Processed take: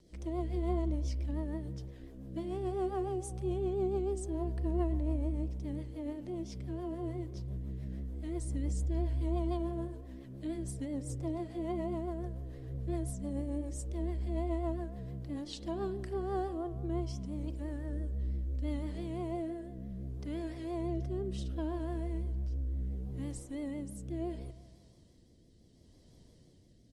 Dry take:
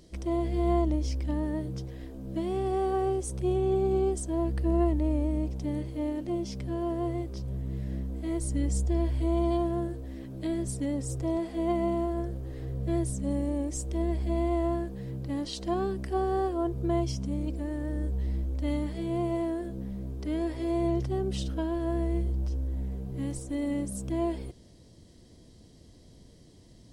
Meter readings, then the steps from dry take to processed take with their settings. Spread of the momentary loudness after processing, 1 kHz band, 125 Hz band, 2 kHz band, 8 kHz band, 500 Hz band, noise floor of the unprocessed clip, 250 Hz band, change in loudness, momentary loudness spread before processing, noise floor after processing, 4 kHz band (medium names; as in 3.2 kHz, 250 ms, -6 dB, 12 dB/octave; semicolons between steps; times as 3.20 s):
8 LU, -8.5 dB, -5.0 dB, -8.5 dB, -9.0 dB, -7.5 dB, -54 dBFS, -7.5 dB, -7.0 dB, 8 LU, -61 dBFS, -8.5 dB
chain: rotary cabinet horn 7 Hz, later 0.7 Hz, at 15.60 s; resampled via 32 kHz; spring tank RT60 1.6 s, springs 31 ms, chirp 60 ms, DRR 12 dB; vibrato 5.9 Hz 75 cents; trim -6 dB